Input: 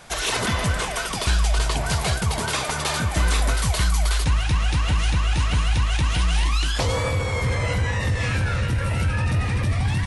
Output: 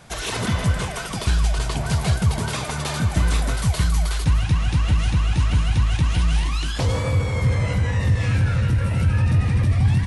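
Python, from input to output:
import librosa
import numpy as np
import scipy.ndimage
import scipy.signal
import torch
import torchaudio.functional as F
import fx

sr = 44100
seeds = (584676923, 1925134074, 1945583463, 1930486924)

y = fx.peak_eq(x, sr, hz=130.0, db=9.0, octaves=2.5)
y = y + 10.0 ** (-12.5 / 20.0) * np.pad(y, (int(158 * sr / 1000.0), 0))[:len(y)]
y = F.gain(torch.from_numpy(y), -4.0).numpy()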